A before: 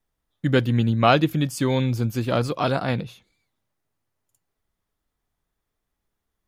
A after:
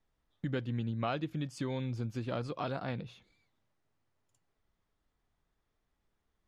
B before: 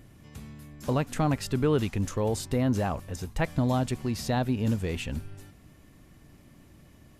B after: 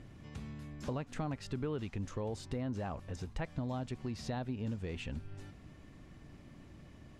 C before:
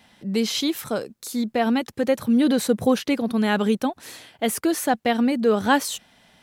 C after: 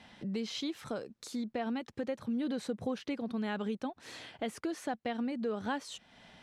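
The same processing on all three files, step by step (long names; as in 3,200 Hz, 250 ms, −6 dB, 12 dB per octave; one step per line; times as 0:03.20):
downward compressor 2.5 to 1, threshold −40 dBFS
high-frequency loss of the air 77 metres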